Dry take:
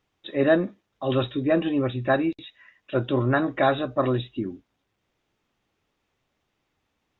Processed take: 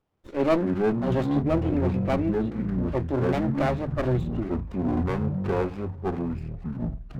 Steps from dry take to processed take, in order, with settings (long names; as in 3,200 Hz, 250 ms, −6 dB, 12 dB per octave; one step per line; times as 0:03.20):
high-shelf EQ 3,200 Hz −9 dB
delay with pitch and tempo change per echo 88 ms, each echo −7 semitones, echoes 3
0:01.42–0:04.04: high-frequency loss of the air 370 metres
windowed peak hold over 17 samples
level −1.5 dB